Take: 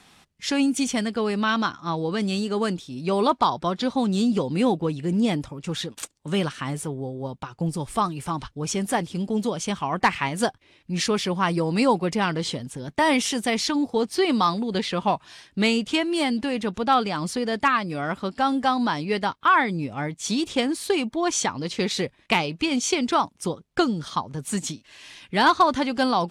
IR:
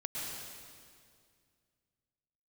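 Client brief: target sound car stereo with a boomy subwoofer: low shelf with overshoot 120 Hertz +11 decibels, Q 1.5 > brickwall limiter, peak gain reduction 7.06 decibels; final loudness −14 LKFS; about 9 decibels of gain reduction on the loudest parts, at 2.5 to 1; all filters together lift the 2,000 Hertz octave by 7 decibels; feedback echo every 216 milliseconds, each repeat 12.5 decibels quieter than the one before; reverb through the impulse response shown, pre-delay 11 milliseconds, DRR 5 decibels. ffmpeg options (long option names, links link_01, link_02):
-filter_complex "[0:a]equalizer=frequency=2000:width_type=o:gain=9,acompressor=threshold=-24dB:ratio=2.5,aecho=1:1:216|432|648:0.237|0.0569|0.0137,asplit=2[link_01][link_02];[1:a]atrim=start_sample=2205,adelay=11[link_03];[link_02][link_03]afir=irnorm=-1:irlink=0,volume=-7.5dB[link_04];[link_01][link_04]amix=inputs=2:normalize=0,lowshelf=frequency=120:width_type=q:width=1.5:gain=11,volume=13.5dB,alimiter=limit=-3dB:level=0:latency=1"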